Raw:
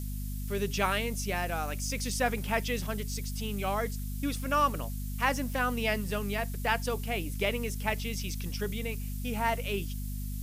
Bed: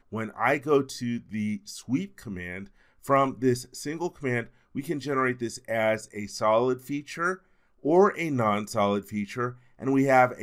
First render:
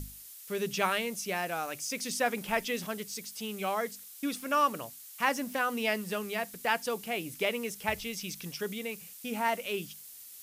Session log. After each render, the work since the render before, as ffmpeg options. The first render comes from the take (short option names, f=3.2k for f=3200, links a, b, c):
-af "bandreject=f=50:t=h:w=6,bandreject=f=100:t=h:w=6,bandreject=f=150:t=h:w=6,bandreject=f=200:t=h:w=6,bandreject=f=250:t=h:w=6"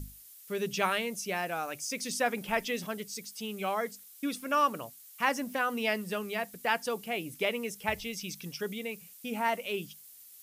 -af "afftdn=nr=6:nf=-49"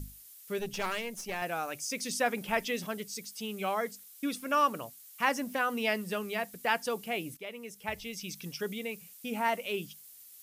-filter_complex "[0:a]asettb=1/sr,asplit=3[a][b][c];[a]atrim=end=0.594[d];[b]atrim=start=0.59:end=1.42,asetpts=PTS-STARTPTS,afade=t=in:d=0.004:c=qsin,afade=t=out:st=0.826:d=0.004:c=qsin,aeval=exprs='(tanh(22.4*val(0)+0.7)-tanh(0.7))/22.4':c=same[e];[c]atrim=start=1.416[f];[d][e]acrossfade=d=0.004:c1=hsin:c2=qsin[g];[g][f]acrossfade=d=0.004:c1=qsin:c2=hsin,asplit=2[h][i];[h]atrim=end=7.37,asetpts=PTS-STARTPTS,afade=t=out:st=7.366:d=0.004:c=hsin:silence=0.177828[j];[i]atrim=start=7.37,asetpts=PTS-STARTPTS,afade=t=in:d=1.09:silence=0.177828[k];[j][k]concat=n=2:v=0:a=1"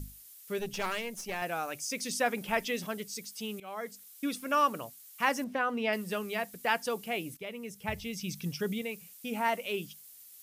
-filter_complex "[0:a]asettb=1/sr,asplit=3[a][b][c];[a]atrim=end=5.444[d];[b]atrim=start=5.44:end=5.93,asetpts=PTS-STARTPTS,afade=t=in:d=0.004:c=qsin,afade=t=out:st=0.486:d=0.004:c=qsin,aemphasis=mode=reproduction:type=75fm[e];[c]atrim=start=5.926[f];[d][e]acrossfade=d=0.004:c1=hsin:c2=qsin[g];[g][f]acrossfade=d=0.004:c1=qsin:c2=hsin,asettb=1/sr,asplit=3[h][i][j];[h]atrim=end=7.414[k];[i]atrim=start=7.41:end=8.82,asetpts=PTS-STARTPTS,afade=t=in:d=0.004:c=qsin,afade=t=out:st=1.406:d=0.004:c=qsin,equalizer=f=110:w=0.76:g=11.5[l];[j]atrim=start=8.816[m];[k][l]acrossfade=d=0.004:c1=hsin:c2=qsin[n];[n][m]acrossfade=d=0.004:c1=qsin:c2=hsin,asplit=2[o][p];[o]atrim=end=3.6,asetpts=PTS-STARTPTS,afade=t=out:st=3.596:d=0.004:c=hsin:silence=0.1[q];[p]atrim=start=3.6,asetpts=PTS-STARTPTS,afade=t=in:d=0.47:silence=0.1[r];[q][r]concat=n=2:v=0:a=1"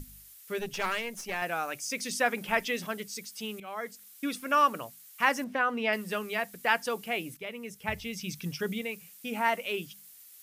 -af "equalizer=f=1.7k:w=0.81:g=4.5,bandreject=f=50:t=h:w=6,bandreject=f=100:t=h:w=6,bandreject=f=150:t=h:w=6,bandreject=f=200:t=h:w=6"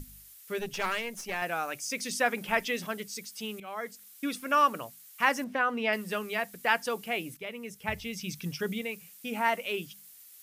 -af anull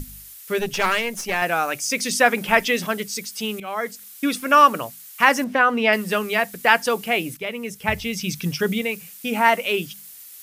-af "volume=10.5dB,alimiter=limit=-1dB:level=0:latency=1"